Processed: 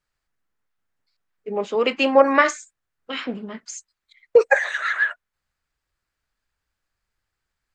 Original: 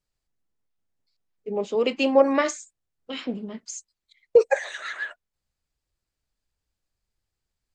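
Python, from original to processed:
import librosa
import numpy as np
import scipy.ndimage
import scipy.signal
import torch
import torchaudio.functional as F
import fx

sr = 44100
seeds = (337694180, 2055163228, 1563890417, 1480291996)

y = fx.peak_eq(x, sr, hz=1500.0, db=11.5, octaves=1.6)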